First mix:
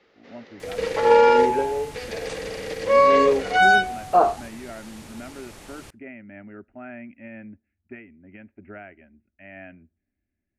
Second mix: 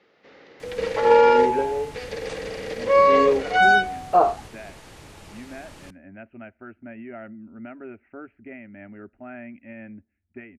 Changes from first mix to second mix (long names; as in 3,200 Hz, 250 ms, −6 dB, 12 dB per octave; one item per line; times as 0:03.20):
speech: entry +2.45 s
master: add high-shelf EQ 6,800 Hz −7.5 dB